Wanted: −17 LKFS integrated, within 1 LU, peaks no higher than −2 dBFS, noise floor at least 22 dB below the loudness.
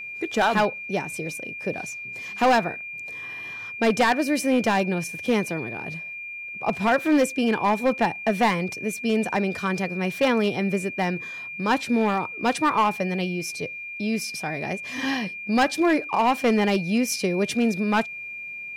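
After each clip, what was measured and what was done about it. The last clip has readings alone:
share of clipped samples 1.2%; peaks flattened at −14.0 dBFS; interfering tone 2,400 Hz; level of the tone −33 dBFS; integrated loudness −24.5 LKFS; sample peak −14.0 dBFS; target loudness −17.0 LKFS
→ clipped peaks rebuilt −14 dBFS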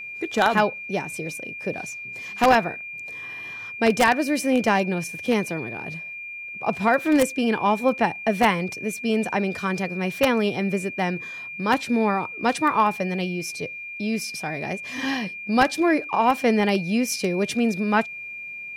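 share of clipped samples 0.0%; interfering tone 2,400 Hz; level of the tone −33 dBFS
→ notch filter 2,400 Hz, Q 30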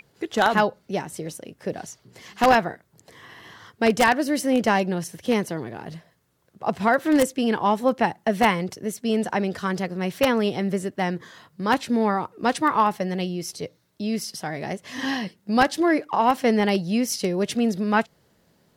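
interfering tone none found; integrated loudness −23.5 LKFS; sample peak −4.5 dBFS; target loudness −17.0 LKFS
→ level +6.5 dB
brickwall limiter −2 dBFS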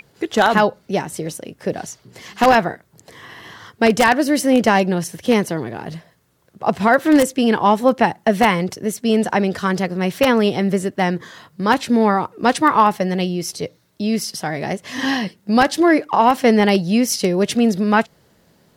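integrated loudness −17.5 LKFS; sample peak −2.0 dBFS; background noise floor −58 dBFS

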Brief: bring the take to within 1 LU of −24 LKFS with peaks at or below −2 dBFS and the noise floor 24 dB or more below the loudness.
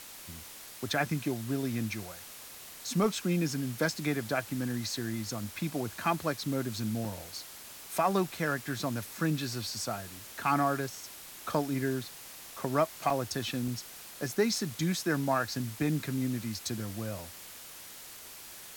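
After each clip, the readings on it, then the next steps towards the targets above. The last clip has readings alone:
number of dropouts 3; longest dropout 3.4 ms; background noise floor −48 dBFS; target noise floor −57 dBFS; integrated loudness −32.5 LKFS; sample peak −15.5 dBFS; target loudness −24.0 LKFS
→ repair the gap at 0:07.05/0:13.10/0:13.68, 3.4 ms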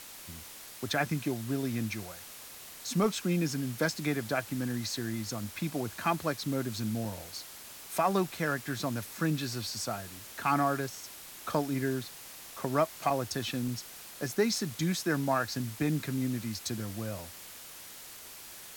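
number of dropouts 0; background noise floor −48 dBFS; target noise floor −57 dBFS
→ broadband denoise 9 dB, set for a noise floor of −48 dBFS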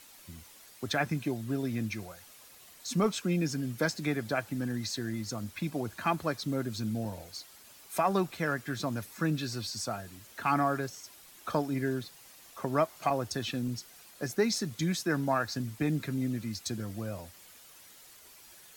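background noise floor −55 dBFS; target noise floor −57 dBFS
→ broadband denoise 6 dB, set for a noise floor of −55 dBFS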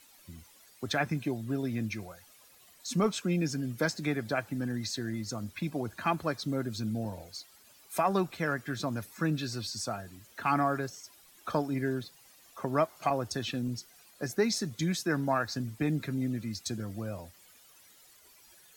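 background noise floor −59 dBFS; integrated loudness −33.0 LKFS; sample peak −16.0 dBFS; target loudness −24.0 LKFS
→ level +9 dB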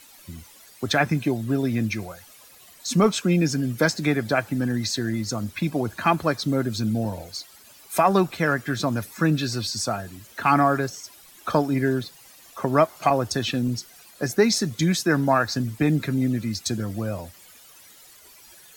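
integrated loudness −24.0 LKFS; sample peak −7.0 dBFS; background noise floor −50 dBFS

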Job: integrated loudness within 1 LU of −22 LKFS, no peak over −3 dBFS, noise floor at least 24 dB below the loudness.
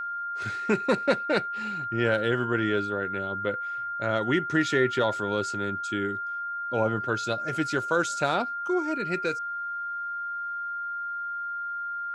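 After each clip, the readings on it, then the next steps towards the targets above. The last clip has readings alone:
interfering tone 1,400 Hz; level of the tone −30 dBFS; integrated loudness −28.0 LKFS; sample peak −10.5 dBFS; target loudness −22.0 LKFS
→ notch filter 1,400 Hz, Q 30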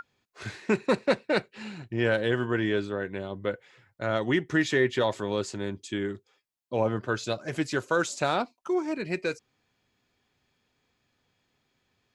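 interfering tone none found; integrated loudness −28.5 LKFS; sample peak −11.0 dBFS; target loudness −22.0 LKFS
→ level +6.5 dB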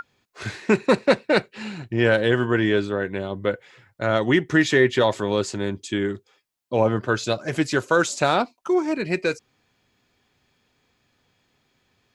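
integrated loudness −22.0 LKFS; sample peak −4.5 dBFS; background noise floor −69 dBFS

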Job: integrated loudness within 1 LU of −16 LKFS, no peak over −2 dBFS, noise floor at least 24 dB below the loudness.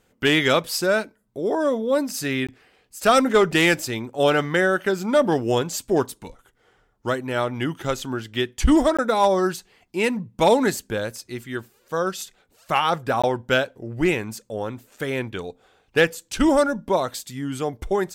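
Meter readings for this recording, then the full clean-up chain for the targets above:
number of dropouts 3; longest dropout 16 ms; integrated loudness −22.5 LKFS; sample peak −6.0 dBFS; target loudness −16.0 LKFS
→ repair the gap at 0:02.47/0:08.97/0:13.22, 16 ms
level +6.5 dB
brickwall limiter −2 dBFS

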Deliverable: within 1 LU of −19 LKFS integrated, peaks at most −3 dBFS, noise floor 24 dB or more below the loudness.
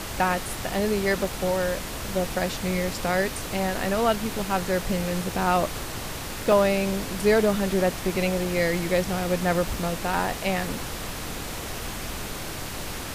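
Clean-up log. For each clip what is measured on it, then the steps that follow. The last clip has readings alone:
number of dropouts 4; longest dropout 2.4 ms; background noise floor −34 dBFS; target noise floor −50 dBFS; integrated loudness −26.0 LKFS; sample peak −8.5 dBFS; target loudness −19.0 LKFS
→ repair the gap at 0:01.25/0:03.12/0:06.52/0:09.74, 2.4 ms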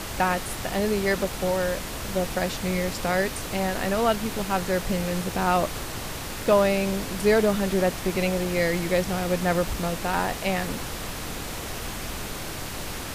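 number of dropouts 0; background noise floor −34 dBFS; target noise floor −50 dBFS
→ noise reduction from a noise print 16 dB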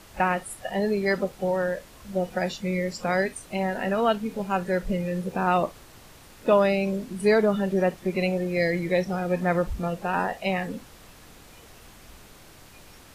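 background noise floor −50 dBFS; integrated loudness −26.0 LKFS; sample peak −9.0 dBFS; target loudness −19.0 LKFS
→ level +7 dB
brickwall limiter −3 dBFS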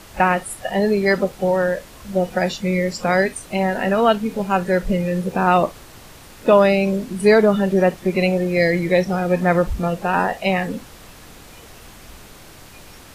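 integrated loudness −19.0 LKFS; sample peak −3.0 dBFS; background noise floor −43 dBFS

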